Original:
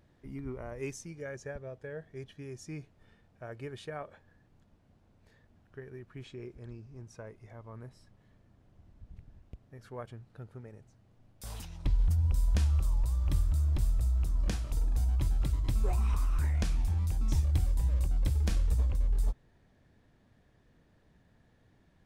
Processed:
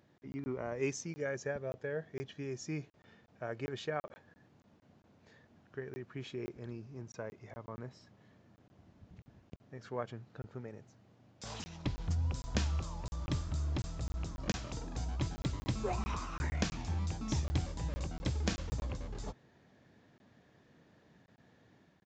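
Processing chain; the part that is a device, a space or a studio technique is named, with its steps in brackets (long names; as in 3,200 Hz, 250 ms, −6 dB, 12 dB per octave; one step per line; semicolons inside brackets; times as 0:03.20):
call with lost packets (high-pass filter 140 Hz 12 dB per octave; downsampling to 16,000 Hz; automatic gain control gain up to 4 dB; dropped packets of 20 ms random)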